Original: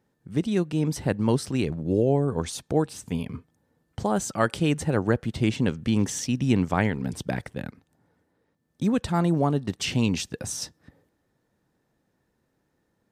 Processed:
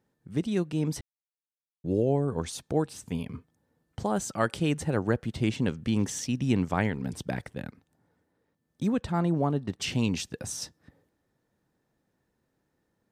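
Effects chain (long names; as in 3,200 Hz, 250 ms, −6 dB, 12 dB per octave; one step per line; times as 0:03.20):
0:01.01–0:01.84: silence
0:08.93–0:09.82: high-shelf EQ 4,400 Hz −9 dB
level −3.5 dB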